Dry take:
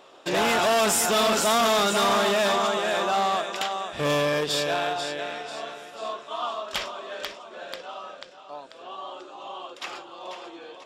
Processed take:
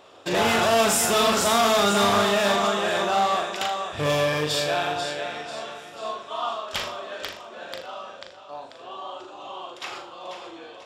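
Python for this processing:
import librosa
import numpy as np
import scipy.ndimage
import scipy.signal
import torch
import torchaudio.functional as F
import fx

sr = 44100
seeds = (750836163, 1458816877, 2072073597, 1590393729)

y = fx.peak_eq(x, sr, hz=96.0, db=15.0, octaves=0.47)
y = fx.room_flutter(y, sr, wall_m=6.8, rt60_s=0.39)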